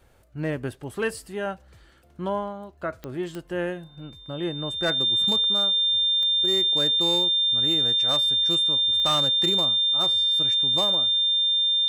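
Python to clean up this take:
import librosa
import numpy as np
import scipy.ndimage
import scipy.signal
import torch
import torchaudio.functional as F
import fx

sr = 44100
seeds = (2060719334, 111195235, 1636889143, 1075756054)

y = fx.fix_declip(x, sr, threshold_db=-17.0)
y = fx.fix_declick_ar(y, sr, threshold=10.0)
y = fx.notch(y, sr, hz=3600.0, q=30.0)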